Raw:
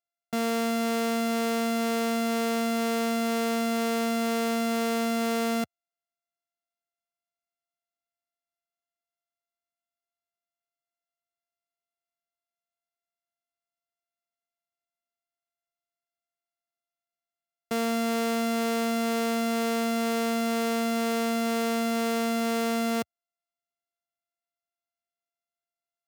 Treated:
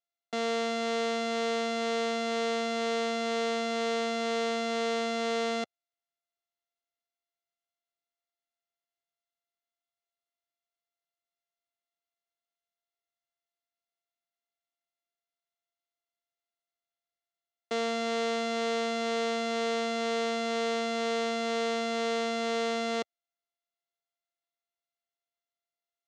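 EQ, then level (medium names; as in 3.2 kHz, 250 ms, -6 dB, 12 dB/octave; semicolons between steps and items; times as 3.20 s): cabinet simulation 450–5900 Hz, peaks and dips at 660 Hz -4 dB, 1 kHz -8 dB, 1.5 kHz -8 dB, 2.5 kHz -7 dB, 5.1 kHz -7 dB; +3.5 dB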